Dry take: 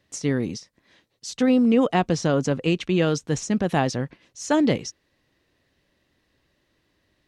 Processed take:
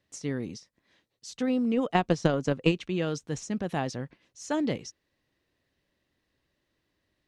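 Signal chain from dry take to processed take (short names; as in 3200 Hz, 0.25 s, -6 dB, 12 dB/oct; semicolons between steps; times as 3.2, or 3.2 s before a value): 1.76–2.72 transient shaper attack +12 dB, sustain -2 dB; gain -8.5 dB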